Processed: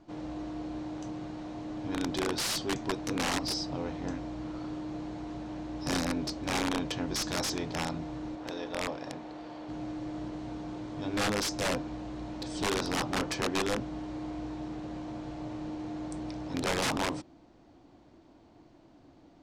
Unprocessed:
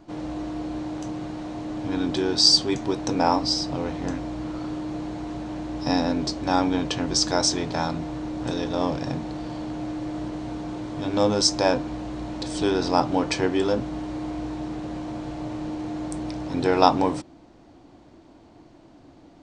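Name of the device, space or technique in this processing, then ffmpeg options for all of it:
overflowing digital effects unit: -filter_complex "[0:a]asettb=1/sr,asplit=3[s0][s1][s2];[s0]atrim=end=8.354[s3];[s1]atrim=start=8.35:end=9.69,asetpts=PTS-STARTPTS,afade=t=in:d=0.004:c=qsin,afade=t=out:st=1.336:d=0.004:c=qsin,bass=f=250:g=-13,treble=f=4000:g=-6[s4];[s2]atrim=start=9.686[s5];[s3][s4]acrossfade=d=0.004:c1=hsin:c2=qsin[s6];[s6][s5]acrossfade=d=0.004:c1=qsin:c2=hsin,aeval=exprs='(mod(6.31*val(0)+1,2)-1)/6.31':c=same,lowpass=8300,volume=0.447"

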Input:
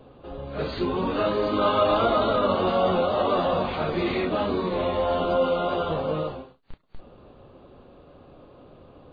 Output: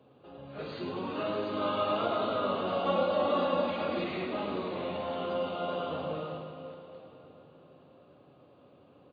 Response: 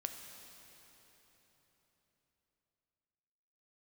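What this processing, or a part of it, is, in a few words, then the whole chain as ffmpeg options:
PA in a hall: -filter_complex "[0:a]highpass=f=100:w=0.5412,highpass=f=100:w=1.3066,equalizer=f=2700:t=o:w=0.41:g=3.5,aecho=1:1:107:0.398[s0];[1:a]atrim=start_sample=2205[s1];[s0][s1]afir=irnorm=-1:irlink=0,asettb=1/sr,asplit=3[s2][s3][s4];[s2]atrim=end=2.854[s5];[s3]atrim=start=2.85:end=4.04,asetpts=PTS-STARTPTS,afade=t=in:d=0.004:c=qsin,afade=t=out:st=1.186:d=0.004:c=qsin,aecho=1:1:3.6:0.91,atrim=end_sample=52479[s6];[s4]atrim=start=4.036[s7];[s5][s6]acrossfade=d=0.004:c1=hsin:c2=qsin[s8];[s8][s7]acrossfade=d=0.004:c1=qsin:c2=hsin,volume=0.376"

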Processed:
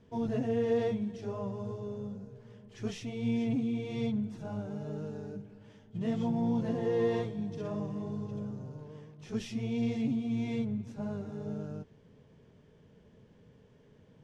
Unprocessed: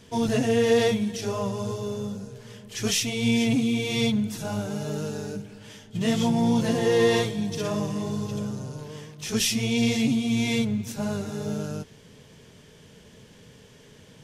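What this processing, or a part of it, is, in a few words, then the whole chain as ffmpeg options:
through cloth: -af "lowpass=7700,highshelf=f=2000:g=-17.5,volume=0.422"

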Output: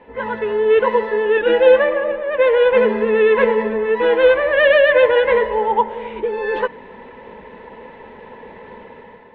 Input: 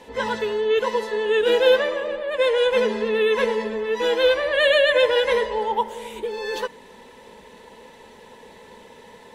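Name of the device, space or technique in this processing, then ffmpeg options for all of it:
action camera in a waterproof case: -filter_complex "[0:a]asettb=1/sr,asplit=3[s0][s1][s2];[s0]atrim=end=1.374[s3];[s1]atrim=start=1.37:end=2.12,asetpts=PTS-STARTPTS,afade=t=in:d=0.004:c=qsin,afade=t=out:st=0.746:d=0.004:c=qsin,aecho=1:1:3.5:0.62,atrim=end_sample=33075[s4];[s2]atrim=start=2.116[s5];[s3][s4]acrossfade=d=0.004:c1=hsin:c2=qsin[s6];[s6][s5]acrossfade=d=0.004:c1=qsin:c2=hsin,lowpass=f=2400:w=0.5412,lowpass=f=2400:w=1.3066,dynaudnorm=f=200:g=5:m=2.51" -ar 48000 -c:a aac -b:a 64k

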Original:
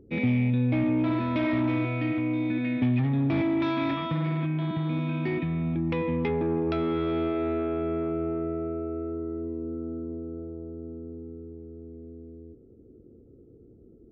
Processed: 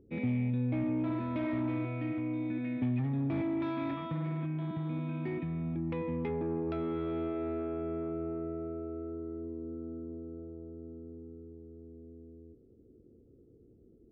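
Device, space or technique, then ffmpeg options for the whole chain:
through cloth: -af "highshelf=f=3000:g=-12.5,volume=0.447"

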